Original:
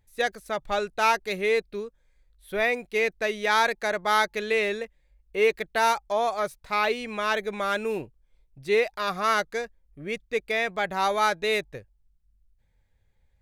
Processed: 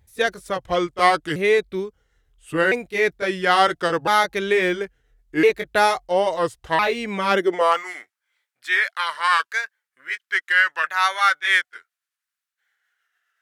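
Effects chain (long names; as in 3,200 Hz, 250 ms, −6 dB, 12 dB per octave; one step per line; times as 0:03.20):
pitch shifter swept by a sawtooth −4.5 semitones, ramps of 1,358 ms
high-pass filter sweep 61 Hz → 1,500 Hz, 0:07.00–0:07.91
level +6.5 dB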